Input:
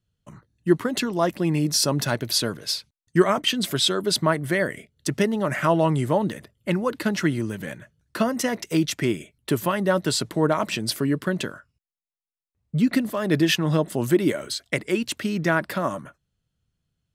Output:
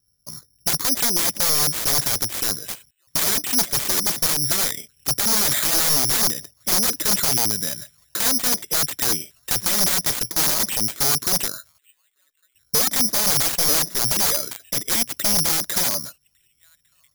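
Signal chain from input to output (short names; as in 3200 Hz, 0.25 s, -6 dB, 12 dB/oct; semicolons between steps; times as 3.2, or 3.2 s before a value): thin delay 1.153 s, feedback 47%, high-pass 5200 Hz, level -17 dB; wrapped overs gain 20.5 dB; careless resampling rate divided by 8×, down filtered, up zero stuff; gain -1 dB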